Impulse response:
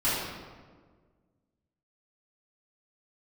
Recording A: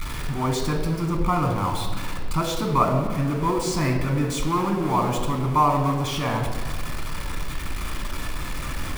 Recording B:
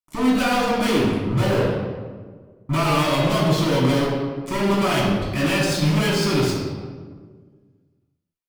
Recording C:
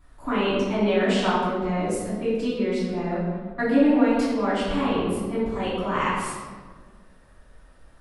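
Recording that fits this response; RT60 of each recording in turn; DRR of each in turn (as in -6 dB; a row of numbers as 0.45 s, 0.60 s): C; 1.6 s, 1.6 s, 1.6 s; 2.0 dB, -5.0 dB, -12.5 dB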